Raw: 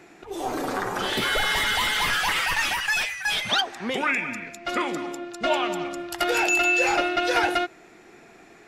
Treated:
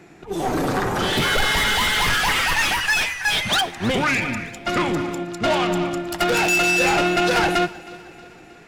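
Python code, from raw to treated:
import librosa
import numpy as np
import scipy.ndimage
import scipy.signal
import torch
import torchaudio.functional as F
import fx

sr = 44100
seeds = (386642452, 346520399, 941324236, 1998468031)

p1 = fx.octave_divider(x, sr, octaves=1, level_db=-5.0)
p2 = fx.low_shelf(p1, sr, hz=290.0, db=6.5)
p3 = 10.0 ** (-23.5 / 20.0) * np.tanh(p2 / 10.0 ** (-23.5 / 20.0))
p4 = p3 + fx.echo_feedback(p3, sr, ms=315, feedback_pct=60, wet_db=-15, dry=0)
p5 = fx.upward_expand(p4, sr, threshold_db=-41.0, expansion=1.5)
y = p5 * librosa.db_to_amplitude(8.5)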